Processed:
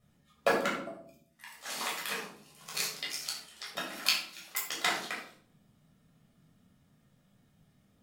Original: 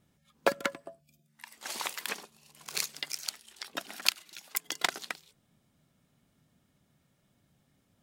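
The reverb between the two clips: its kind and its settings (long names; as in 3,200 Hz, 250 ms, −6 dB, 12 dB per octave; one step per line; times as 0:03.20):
rectangular room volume 770 cubic metres, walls furnished, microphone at 6.2 metres
level −6.5 dB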